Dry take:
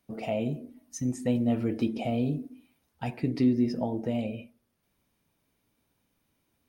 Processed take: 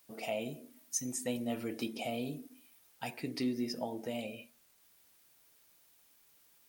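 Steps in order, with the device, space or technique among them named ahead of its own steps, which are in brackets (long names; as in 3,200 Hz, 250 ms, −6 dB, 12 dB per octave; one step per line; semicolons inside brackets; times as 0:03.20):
turntable without a phono preamp (RIAA equalisation recording; white noise bed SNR 29 dB)
level −4 dB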